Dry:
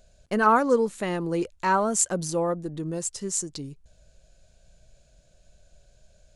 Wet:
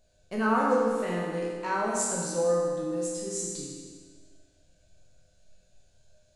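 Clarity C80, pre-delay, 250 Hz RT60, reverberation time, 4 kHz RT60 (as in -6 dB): 1.0 dB, 10 ms, 1.7 s, 1.7 s, 1.6 s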